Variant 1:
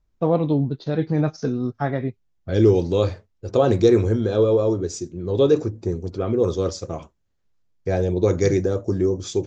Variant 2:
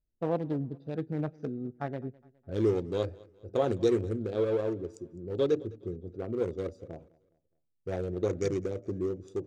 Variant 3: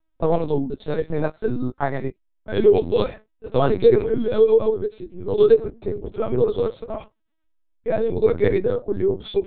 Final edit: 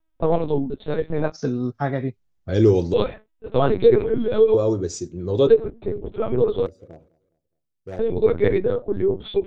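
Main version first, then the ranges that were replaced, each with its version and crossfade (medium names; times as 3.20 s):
3
1.32–2.94 s: from 1
4.54–5.47 s: from 1
6.66–7.99 s: from 2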